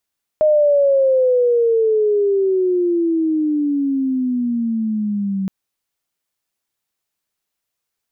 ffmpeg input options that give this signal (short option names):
-f lavfi -i "aevalsrc='pow(10,(-10-8*t/5.07)/20)*sin(2*PI*620*5.07/log(190/620)*(exp(log(190/620)*t/5.07)-1))':d=5.07:s=44100"